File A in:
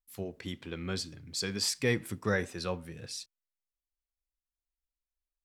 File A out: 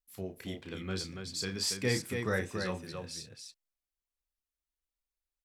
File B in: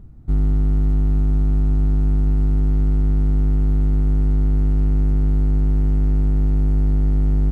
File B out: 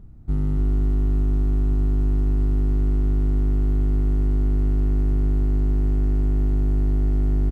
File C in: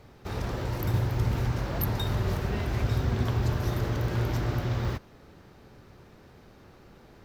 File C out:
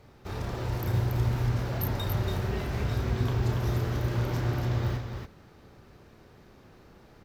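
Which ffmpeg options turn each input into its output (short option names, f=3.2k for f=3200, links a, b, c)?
-af "aecho=1:1:32.07|282.8:0.447|0.562,volume=-3dB"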